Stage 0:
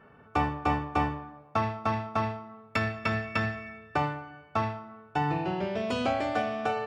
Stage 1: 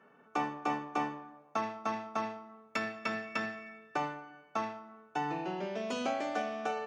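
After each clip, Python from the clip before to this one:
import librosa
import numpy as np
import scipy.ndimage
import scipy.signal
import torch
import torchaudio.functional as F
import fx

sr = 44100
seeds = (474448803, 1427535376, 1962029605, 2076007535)

y = scipy.signal.sosfilt(scipy.signal.butter(4, 190.0, 'highpass', fs=sr, output='sos'), x)
y = fx.peak_eq(y, sr, hz=6300.0, db=12.0, octaves=0.23)
y = y * 10.0 ** (-5.5 / 20.0)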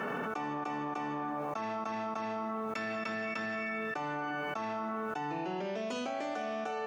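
y = fx.env_flatten(x, sr, amount_pct=100)
y = y * 10.0 ** (-7.0 / 20.0)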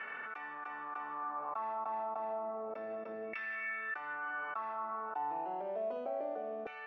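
y = fx.air_absorb(x, sr, metres=150.0)
y = fx.filter_lfo_bandpass(y, sr, shape='saw_down', hz=0.3, low_hz=440.0, high_hz=2200.0, q=2.7)
y = y * 10.0 ** (3.0 / 20.0)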